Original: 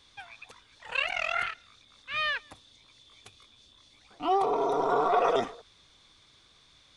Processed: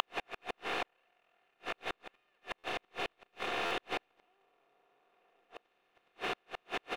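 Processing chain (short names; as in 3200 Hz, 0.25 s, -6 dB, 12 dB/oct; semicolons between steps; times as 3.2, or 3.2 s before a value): per-bin compression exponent 0.2; recorder AGC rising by 16 dB/s; early reflections 15 ms -13 dB, 74 ms -9 dB; shoebox room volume 2600 m³, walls furnished, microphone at 0.86 m; flipped gate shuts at -19 dBFS, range -27 dB; sample leveller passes 1; flipped gate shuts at -33 dBFS, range -41 dB; stuck buffer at 2.58/3.65, samples 512, times 4; gain +9.5 dB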